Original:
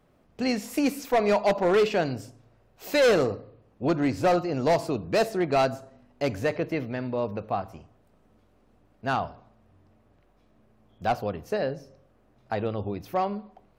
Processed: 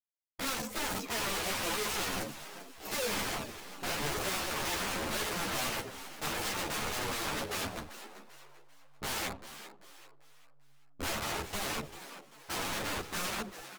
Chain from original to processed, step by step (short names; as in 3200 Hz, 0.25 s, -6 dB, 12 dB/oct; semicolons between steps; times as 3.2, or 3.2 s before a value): bin magnitudes rounded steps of 30 dB; high shelf 2800 Hz -10 dB; notches 60/120/180 Hz; sample leveller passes 3; wrapped overs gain 25 dB; vibrato 0.51 Hz 94 cents; backlash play -42 dBFS; frequency-shifting echo 0.392 s, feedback 39%, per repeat +140 Hz, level -13 dB; ensemble effect; gain -2 dB